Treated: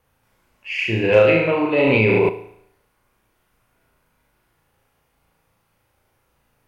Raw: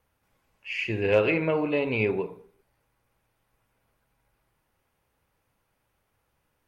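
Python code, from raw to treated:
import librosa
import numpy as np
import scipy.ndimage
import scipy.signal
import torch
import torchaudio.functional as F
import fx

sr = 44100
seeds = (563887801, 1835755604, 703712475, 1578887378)

p1 = x + fx.room_flutter(x, sr, wall_m=6.2, rt60_s=0.72, dry=0)
p2 = fx.env_flatten(p1, sr, amount_pct=100, at=(1.78, 2.29))
y = p2 * 10.0 ** (5.0 / 20.0)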